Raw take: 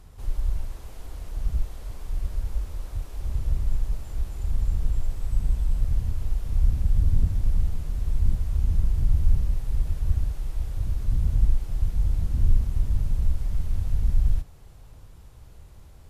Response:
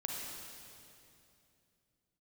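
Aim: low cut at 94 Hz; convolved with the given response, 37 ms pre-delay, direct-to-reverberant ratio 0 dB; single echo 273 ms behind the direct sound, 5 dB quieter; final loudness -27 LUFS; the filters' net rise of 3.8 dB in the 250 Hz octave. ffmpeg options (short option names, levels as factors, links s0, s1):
-filter_complex "[0:a]highpass=94,equalizer=f=250:t=o:g=6.5,aecho=1:1:273:0.562,asplit=2[s0][s1];[1:a]atrim=start_sample=2205,adelay=37[s2];[s1][s2]afir=irnorm=-1:irlink=0,volume=0.841[s3];[s0][s3]amix=inputs=2:normalize=0,volume=1.58"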